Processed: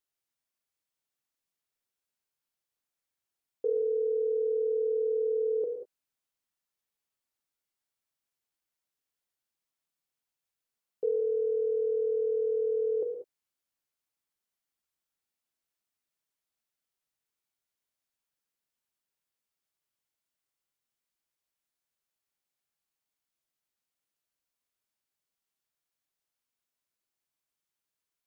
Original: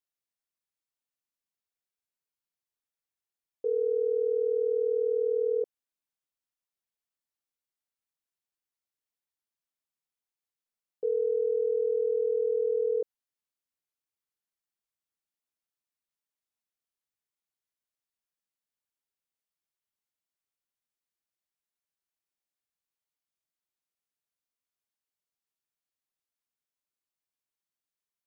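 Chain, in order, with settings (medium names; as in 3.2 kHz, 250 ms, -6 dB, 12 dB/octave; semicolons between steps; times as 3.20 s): gated-style reverb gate 220 ms flat, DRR 3 dB; trim +1.5 dB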